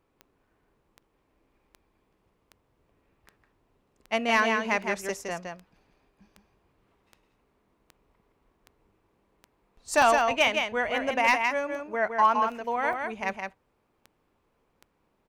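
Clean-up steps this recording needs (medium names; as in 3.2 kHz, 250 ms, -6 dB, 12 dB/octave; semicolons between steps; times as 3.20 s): clip repair -13 dBFS; de-click; interpolate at 0.47/2.05/2.89/10.02/12.93 s, 2.7 ms; inverse comb 164 ms -5 dB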